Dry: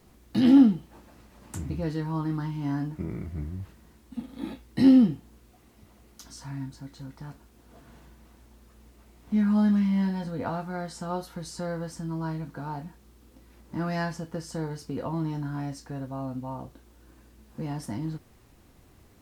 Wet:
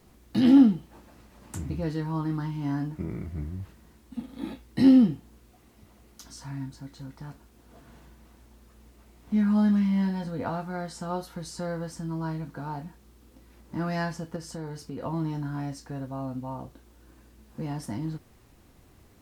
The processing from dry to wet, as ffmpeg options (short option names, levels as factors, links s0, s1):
-filter_complex "[0:a]asettb=1/sr,asplit=3[s0][s1][s2];[s0]atrim=end=14.364[s3];[s1]atrim=start=14.36:end=15.03,asetpts=PTS-STARTPTS,afade=t=in:d=0.004:c=qsin,afade=t=out:st=0.666:d=0.004:c=qsin,acompressor=threshold=0.02:ratio=2.5:attack=3.2:release=140:knee=1:detection=peak[s4];[s2]atrim=start=15.026[s5];[s3][s4]acrossfade=d=0.004:c1=hsin:c2=qsin[s6];[s6][s5]acrossfade=d=0.004:c1=qsin:c2=hsin"